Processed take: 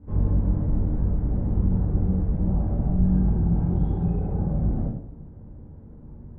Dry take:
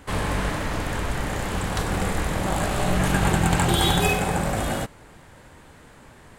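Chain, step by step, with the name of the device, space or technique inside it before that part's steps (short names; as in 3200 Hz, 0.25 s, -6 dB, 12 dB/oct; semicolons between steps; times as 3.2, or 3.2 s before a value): television next door (compressor 3:1, threshold -27 dBFS, peak gain reduction 9 dB; LPF 250 Hz 12 dB/oct; reverb RT60 0.65 s, pre-delay 13 ms, DRR -7.5 dB)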